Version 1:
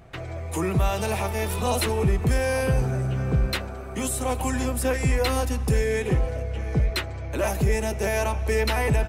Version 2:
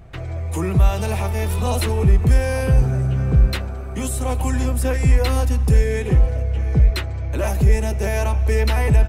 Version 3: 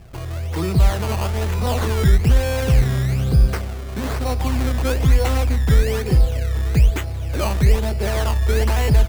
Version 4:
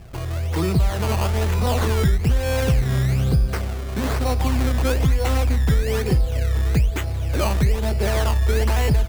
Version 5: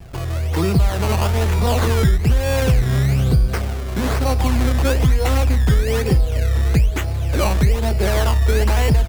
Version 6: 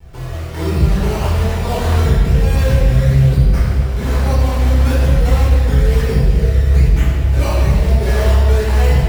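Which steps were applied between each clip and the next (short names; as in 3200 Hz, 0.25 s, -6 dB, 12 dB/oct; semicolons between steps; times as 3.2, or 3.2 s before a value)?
low shelf 130 Hz +11.5 dB
decimation with a swept rate 17×, swing 100% 1.1 Hz
compressor, threshold -16 dBFS, peak gain reduction 8 dB; gain +1.5 dB
vibrato 1.7 Hz 65 cents; gain +3 dB
reverb RT60 2.2 s, pre-delay 7 ms, DRR -8 dB; gain -10.5 dB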